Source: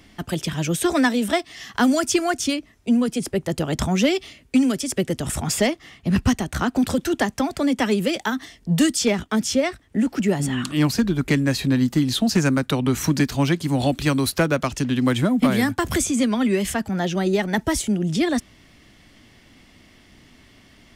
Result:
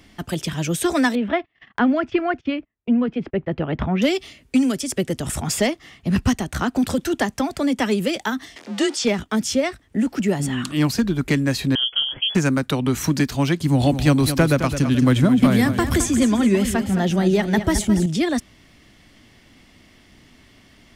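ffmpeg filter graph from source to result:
ffmpeg -i in.wav -filter_complex "[0:a]asettb=1/sr,asplit=3[link_01][link_02][link_03];[link_01]atrim=end=1.154[link_04];[link_02]atrim=start=1.15:end=4.02,asetpts=PTS-STARTPTS,afade=type=in:duration=0.004:curve=qsin,afade=type=out:start_time=2.866:duration=0.004:curve=qsin,lowpass=frequency=2700:width=0.5412,lowpass=frequency=2700:width=1.3066,agate=range=-28dB:threshold=-40dB:ratio=16:release=100:detection=peak[link_05];[link_03]atrim=start=4.016[link_06];[link_04][link_05]acrossfade=duration=0.004:curve1=hsin:curve2=qsin[link_07];[link_07][link_06]acrossfade=duration=0.004:curve1=qsin:curve2=hsin,asettb=1/sr,asplit=3[link_08][link_09][link_10];[link_08]atrim=end=8.564[link_11];[link_09]atrim=start=8.56:end=9.05,asetpts=PTS-STARTPTS,afade=type=in:duration=0.004:curve=qsin,afade=type=out:start_time=0.486:duration=0.004:curve=qsin,aeval=exprs='val(0)+0.5*0.0282*sgn(val(0))':channel_layout=same,highpass=310,lowpass=5900,afreqshift=37[link_12];[link_10]atrim=start=9.046[link_13];[link_11][link_12]acrossfade=duration=0.004:curve1=hsin:curve2=qsin[link_14];[link_14][link_13]acrossfade=duration=0.004:curve1=qsin:curve2=hsin,asettb=1/sr,asplit=3[link_15][link_16][link_17];[link_15]atrim=end=11.754[link_18];[link_16]atrim=start=11.75:end=12.35,asetpts=PTS-STARTPTS,afade=type=in:duration=0.004:curve=qsin,afade=type=out:start_time=0.596:duration=0.004:curve=qsin,tremolo=f=230:d=0.75,lowpass=frequency=2900:width_type=q:width=0.5098,lowpass=frequency=2900:width_type=q:width=0.6013,lowpass=frequency=2900:width_type=q:width=0.9,lowpass=frequency=2900:width_type=q:width=2.563,afreqshift=-3400[link_19];[link_17]atrim=start=12.346[link_20];[link_18][link_19]acrossfade=duration=0.004:curve1=hsin:curve2=qsin[link_21];[link_21][link_20]acrossfade=duration=0.004:curve1=qsin:curve2=hsin,asettb=1/sr,asplit=3[link_22][link_23][link_24];[link_22]atrim=end=13.604[link_25];[link_23]atrim=start=13.6:end=18.06,asetpts=PTS-STARTPTS,afade=type=in:duration=0.004:curve=qsin,afade=type=out:start_time=4.456:duration=0.004:curve=qsin,lowshelf=frequency=190:gain=8.5,aecho=1:1:215|430|645|860:0.316|0.133|0.0558|0.0234,atrim=end_sample=196686[link_26];[link_24]atrim=start=18.056[link_27];[link_25][link_26]acrossfade=duration=0.004:curve1=hsin:curve2=qsin[link_28];[link_28][link_27]acrossfade=duration=0.004:curve1=qsin:curve2=hsin" out.wav

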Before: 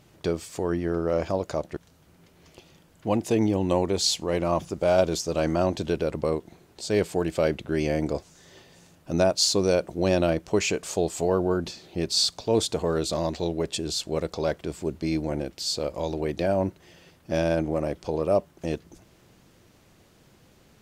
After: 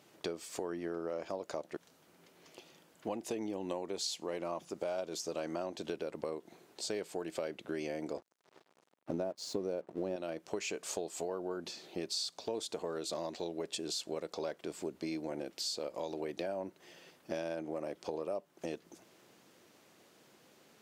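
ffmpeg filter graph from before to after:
ffmpeg -i in.wav -filter_complex "[0:a]asettb=1/sr,asplit=3[link_01][link_02][link_03];[link_01]atrim=end=8.174[link_04];[link_02]atrim=start=8.17:end=10.16,asetpts=PTS-STARTPTS,afade=type=in:duration=0.004:curve=qsin,afade=type=out:start_time=1.986:duration=0.004:curve=qsin,tiltshelf=frequency=1200:gain=9,aeval=exprs='sgn(val(0))*max(abs(val(0))-0.00708,0)':channel_layout=same[link_05];[link_03]atrim=start=10.156[link_06];[link_04][link_05]acrossfade=duration=0.004:curve1=hsin:curve2=qsin[link_07];[link_07][link_06]acrossfade=duration=0.004:curve1=qsin:curve2=hsin,highpass=270,acompressor=threshold=-32dB:ratio=6,volume=-3dB" out.wav

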